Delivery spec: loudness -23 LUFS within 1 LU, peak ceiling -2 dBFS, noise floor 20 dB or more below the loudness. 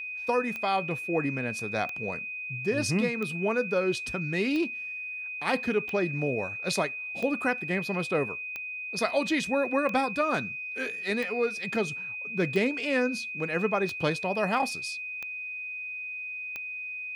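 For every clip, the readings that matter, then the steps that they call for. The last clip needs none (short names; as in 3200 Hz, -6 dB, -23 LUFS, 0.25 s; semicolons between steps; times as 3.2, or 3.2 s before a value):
clicks 13; steady tone 2500 Hz; tone level -34 dBFS; loudness -29.0 LUFS; peak -12.0 dBFS; loudness target -23.0 LUFS
-> de-click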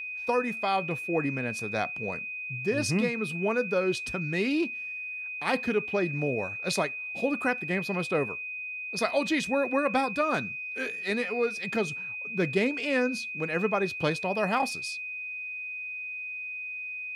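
clicks 0; steady tone 2500 Hz; tone level -34 dBFS
-> notch 2500 Hz, Q 30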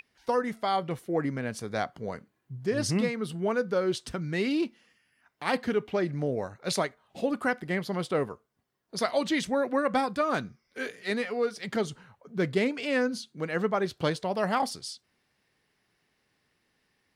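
steady tone none; loudness -30.0 LUFS; peak -12.0 dBFS; loudness target -23.0 LUFS
-> gain +7 dB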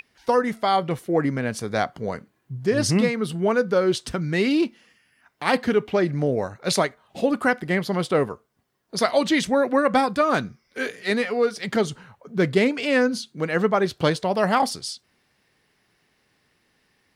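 loudness -23.0 LUFS; peak -5.0 dBFS; noise floor -68 dBFS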